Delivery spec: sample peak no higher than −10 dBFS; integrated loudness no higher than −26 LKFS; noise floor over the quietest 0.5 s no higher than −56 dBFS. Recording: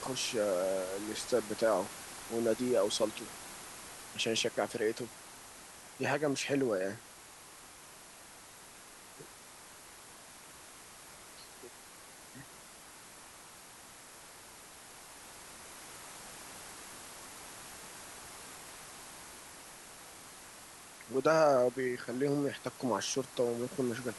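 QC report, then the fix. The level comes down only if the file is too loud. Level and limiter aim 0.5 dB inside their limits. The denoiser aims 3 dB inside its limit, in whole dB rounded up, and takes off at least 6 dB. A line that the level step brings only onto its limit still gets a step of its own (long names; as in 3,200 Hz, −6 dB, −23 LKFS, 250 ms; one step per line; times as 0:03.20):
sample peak −16.0 dBFS: in spec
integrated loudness −34.5 LKFS: in spec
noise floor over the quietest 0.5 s −53 dBFS: out of spec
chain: broadband denoise 6 dB, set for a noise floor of −53 dBFS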